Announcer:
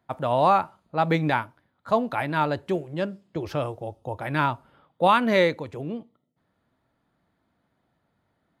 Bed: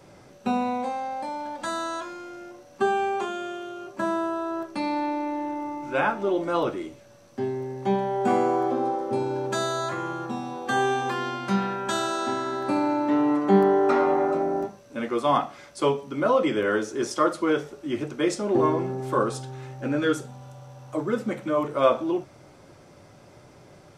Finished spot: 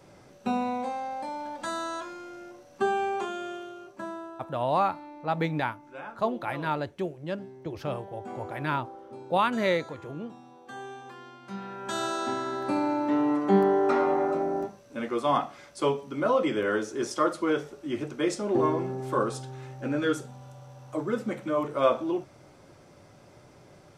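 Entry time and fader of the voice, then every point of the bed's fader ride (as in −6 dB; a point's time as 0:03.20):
4.30 s, −5.5 dB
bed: 0:03.55 −3 dB
0:04.53 −17.5 dB
0:11.41 −17.5 dB
0:12.04 −3 dB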